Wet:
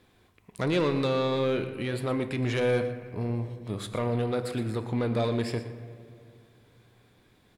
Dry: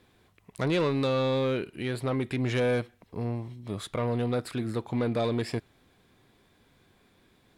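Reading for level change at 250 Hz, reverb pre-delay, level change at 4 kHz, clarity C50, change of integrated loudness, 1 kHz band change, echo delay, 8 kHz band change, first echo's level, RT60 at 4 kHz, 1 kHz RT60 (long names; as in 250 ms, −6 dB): 0.0 dB, 9 ms, +0.5 dB, 9.5 dB, +0.5 dB, +0.5 dB, 119 ms, +0.5 dB, −14.0 dB, 1.2 s, 1.9 s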